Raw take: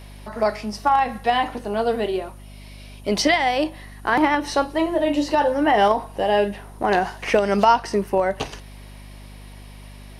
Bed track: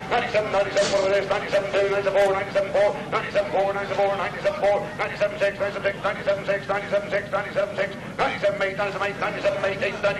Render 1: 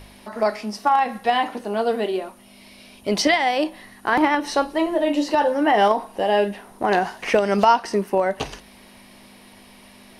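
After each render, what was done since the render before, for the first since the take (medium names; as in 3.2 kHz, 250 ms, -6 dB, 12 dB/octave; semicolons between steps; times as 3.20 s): de-hum 50 Hz, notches 3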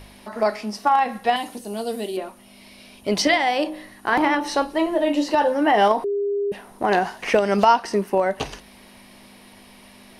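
1.36–2.17 s: FFT filter 150 Hz 0 dB, 1.5 kHz -12 dB, 8.1 kHz +10 dB; 3.14–4.62 s: de-hum 51.44 Hz, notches 27; 6.04–6.52 s: bleep 404 Hz -20 dBFS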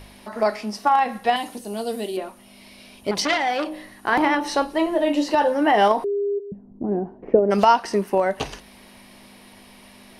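3.11–3.71 s: transformer saturation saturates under 1.6 kHz; 6.38–7.50 s: resonant low-pass 170 Hz -> 480 Hz, resonance Q 1.8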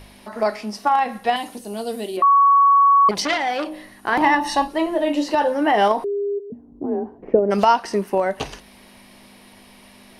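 2.22–3.09 s: bleep 1.12 kHz -10 dBFS; 4.21–4.68 s: comb 1.1 ms, depth 98%; 6.50–7.19 s: frequency shift +38 Hz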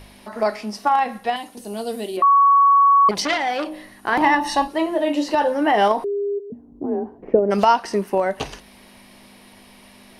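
1.03–1.57 s: fade out, to -7 dB; 4.67–5.28 s: high-pass 71 Hz 6 dB/octave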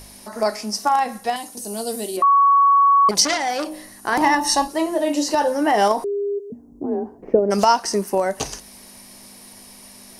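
resonant high shelf 4.4 kHz +10.5 dB, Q 1.5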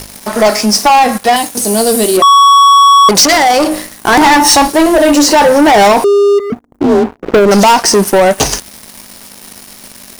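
waveshaping leveller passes 5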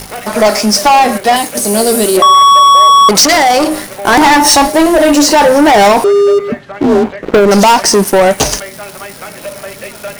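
add bed track -2.5 dB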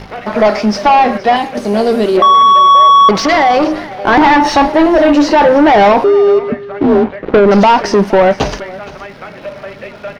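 distance through air 260 m; delay 467 ms -19 dB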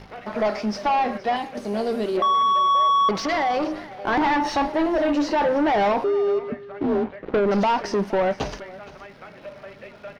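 trim -13 dB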